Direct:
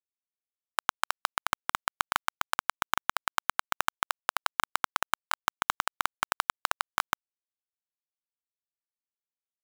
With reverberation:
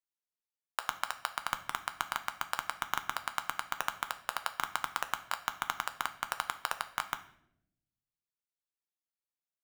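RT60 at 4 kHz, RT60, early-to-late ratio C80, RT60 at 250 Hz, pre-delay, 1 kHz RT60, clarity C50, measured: 0.55 s, 0.75 s, 17.0 dB, 1.2 s, 6 ms, 0.65 s, 13.5 dB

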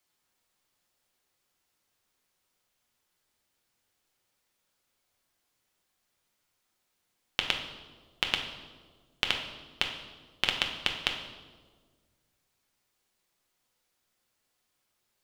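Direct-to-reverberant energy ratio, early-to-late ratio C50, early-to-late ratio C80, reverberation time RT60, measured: 2.0 dB, 6.5 dB, 9.0 dB, 1.6 s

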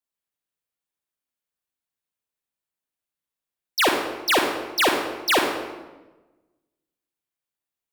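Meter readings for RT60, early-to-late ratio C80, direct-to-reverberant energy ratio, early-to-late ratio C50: 1.2 s, 6.0 dB, 2.5 dB, 4.0 dB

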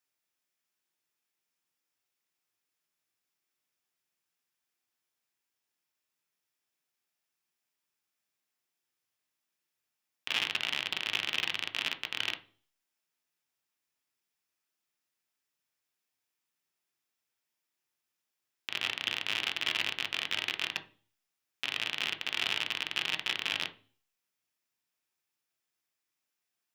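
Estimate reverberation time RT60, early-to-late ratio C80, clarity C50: 0.40 s, 21.0 dB, 15.5 dB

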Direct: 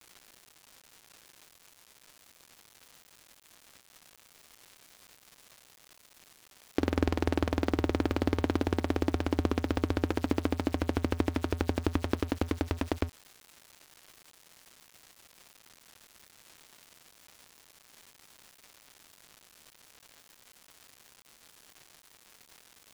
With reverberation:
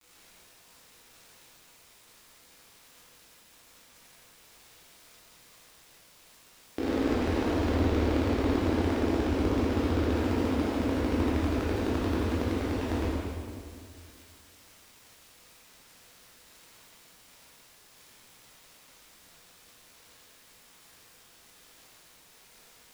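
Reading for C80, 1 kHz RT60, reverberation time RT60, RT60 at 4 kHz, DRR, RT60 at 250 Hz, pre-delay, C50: -1.5 dB, 2.0 s, 2.1 s, 1.7 s, -9.0 dB, 2.5 s, 12 ms, -3.5 dB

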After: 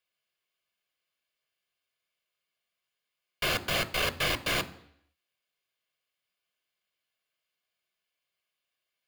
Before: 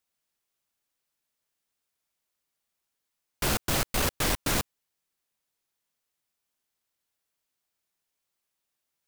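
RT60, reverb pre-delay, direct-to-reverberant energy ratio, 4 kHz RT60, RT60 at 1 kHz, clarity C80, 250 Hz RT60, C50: 0.70 s, 3 ms, 10.5 dB, 0.75 s, 0.70 s, 20.5 dB, 0.65 s, 17.5 dB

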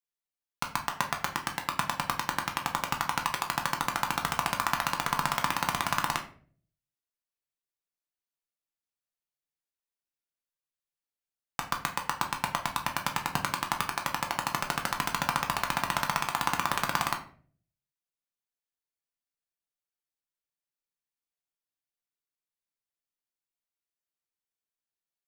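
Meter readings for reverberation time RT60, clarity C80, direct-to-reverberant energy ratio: 0.50 s, 15.0 dB, 2.5 dB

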